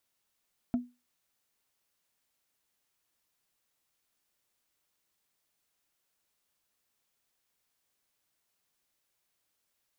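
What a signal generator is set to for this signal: wood hit, lowest mode 245 Hz, decay 0.26 s, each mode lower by 12 dB, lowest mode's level -22 dB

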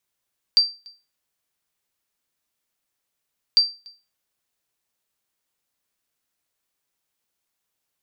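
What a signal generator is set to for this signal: sonar ping 4690 Hz, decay 0.30 s, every 3.00 s, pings 2, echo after 0.29 s, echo -28 dB -8 dBFS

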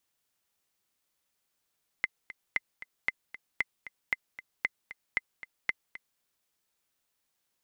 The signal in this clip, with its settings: metronome 230 bpm, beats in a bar 2, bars 8, 2060 Hz, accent 15.5 dB -13.5 dBFS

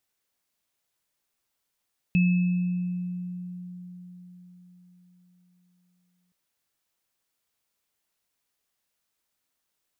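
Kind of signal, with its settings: sine partials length 4.17 s, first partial 179 Hz, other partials 2600 Hz, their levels -11 dB, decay 4.65 s, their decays 1.41 s, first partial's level -17 dB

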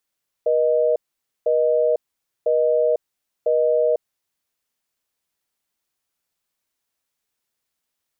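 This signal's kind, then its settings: call progress tone busy tone, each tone -18 dBFS 3.83 s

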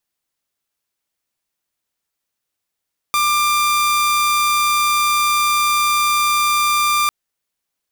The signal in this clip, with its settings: tone saw 1190 Hz -11.5 dBFS 3.95 s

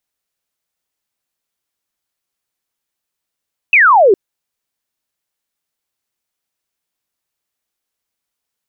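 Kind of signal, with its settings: laser zap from 2700 Hz, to 360 Hz, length 0.41 s sine, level -5 dB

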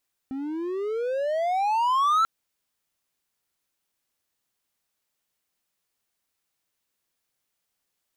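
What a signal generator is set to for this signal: gliding synth tone triangle, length 1.94 s, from 261 Hz, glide +28.5 st, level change +11.5 dB, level -15.5 dB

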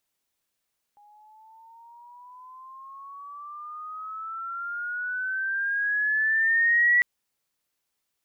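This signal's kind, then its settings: gliding synth tone sine, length 6.05 s, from 821 Hz, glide +15 st, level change +36 dB, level -16 dB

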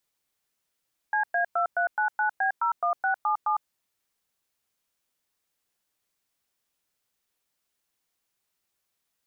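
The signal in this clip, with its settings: DTMF "CA2399B01677", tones 0.105 s, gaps 0.107 s, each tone -24.5 dBFS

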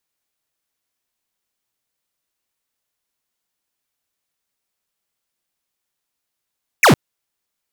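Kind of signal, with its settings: laser zap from 2700 Hz, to 98 Hz, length 0.11 s square, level -9.5 dB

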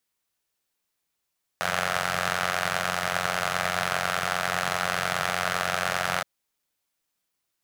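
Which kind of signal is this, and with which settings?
four-cylinder engine model, steady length 4.62 s, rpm 2700, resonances 150/700/1300 Hz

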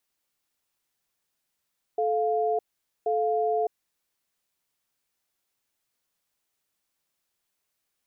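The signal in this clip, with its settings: cadence 435 Hz, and 701 Hz, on 0.61 s, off 0.47 s, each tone -25 dBFS 1.83 s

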